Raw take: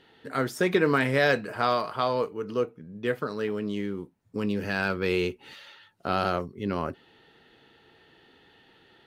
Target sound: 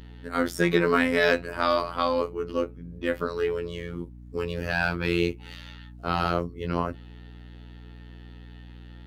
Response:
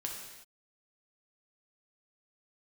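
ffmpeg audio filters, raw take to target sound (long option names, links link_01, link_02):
-af "afftfilt=real='hypot(re,im)*cos(PI*b)':imag='0':win_size=2048:overlap=0.75,aeval=exprs='val(0)+0.00398*(sin(2*PI*60*n/s)+sin(2*PI*2*60*n/s)/2+sin(2*PI*3*60*n/s)/3+sin(2*PI*4*60*n/s)/4+sin(2*PI*5*60*n/s)/5)':channel_layout=same,volume=5dB"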